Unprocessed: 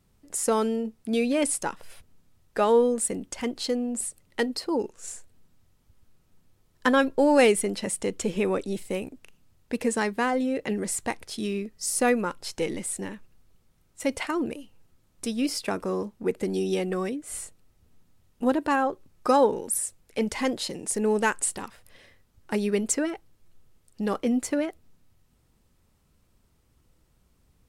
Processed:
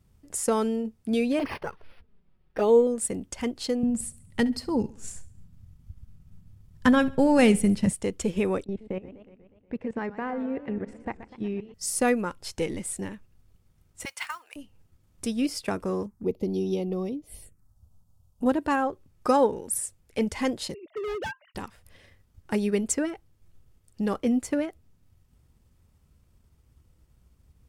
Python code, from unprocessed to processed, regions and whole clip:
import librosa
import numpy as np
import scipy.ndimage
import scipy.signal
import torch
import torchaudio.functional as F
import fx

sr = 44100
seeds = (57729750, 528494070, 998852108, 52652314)

y = fx.chain(x, sr, fx.peak_eq(hz=420.0, db=6.0, octaves=0.41),
    fx.env_flanger(rest_ms=5.6, full_db=-16.5),
    fx.resample_linear(factor=6), at=(1.39, 2.87))
y = fx.chain(y, sr, fx.low_shelf_res(hz=250.0, db=10.0, q=1.5),
    fx.echo_feedback(ms=68, feedback_pct=45, wet_db=-18.5), at=(3.83, 7.93))
y = fx.chain(y, sr, fx.lowpass(hz=1900.0, slope=12),
    fx.level_steps(step_db=15),
    fx.echo_warbled(ms=121, feedback_pct=63, rate_hz=2.8, cents=192, wet_db=-12.5), at=(8.64, 11.74))
y = fx.chain(y, sr, fx.highpass(hz=1000.0, slope=24),
    fx.mod_noise(seeds[0], snr_db=21), at=(14.05, 14.56))
y = fx.chain(y, sr, fx.peak_eq(hz=2500.0, db=-5.5, octaves=1.6),
    fx.env_phaser(low_hz=300.0, high_hz=1600.0, full_db=-31.5), at=(16.06, 18.46))
y = fx.chain(y, sr, fx.sine_speech(),
    fx.clip_hard(threshold_db=-29.0), at=(20.74, 21.55))
y = fx.peak_eq(y, sr, hz=70.0, db=10.0, octaves=2.2)
y = fx.notch(y, sr, hz=4000.0, q=24.0)
y = fx.transient(y, sr, attack_db=1, sustain_db=-3)
y = y * 10.0 ** (-2.0 / 20.0)